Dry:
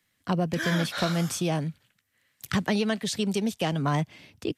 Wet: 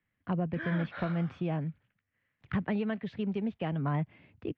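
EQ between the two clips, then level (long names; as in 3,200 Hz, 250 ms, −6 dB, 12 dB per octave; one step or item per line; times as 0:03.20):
low-pass filter 2,500 Hz 24 dB per octave
low-shelf EQ 190 Hz +7 dB
−8.0 dB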